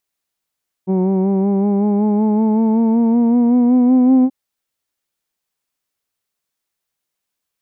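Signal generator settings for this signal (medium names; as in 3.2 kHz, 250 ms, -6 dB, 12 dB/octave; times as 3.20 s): formant-synthesis vowel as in who'd, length 3.43 s, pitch 185 Hz, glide +6 st, vibrato depth 0.4 st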